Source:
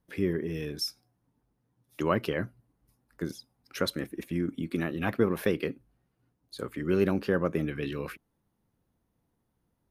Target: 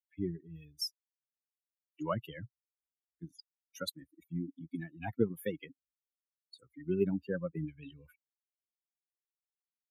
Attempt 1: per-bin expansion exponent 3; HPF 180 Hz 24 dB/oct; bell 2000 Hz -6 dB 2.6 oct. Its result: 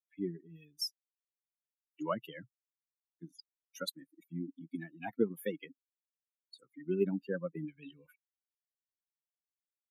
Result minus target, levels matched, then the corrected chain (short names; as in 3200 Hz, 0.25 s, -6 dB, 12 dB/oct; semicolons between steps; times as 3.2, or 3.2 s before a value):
125 Hz band -4.5 dB
per-bin expansion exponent 3; HPF 75 Hz 24 dB/oct; bell 2000 Hz -6 dB 2.6 oct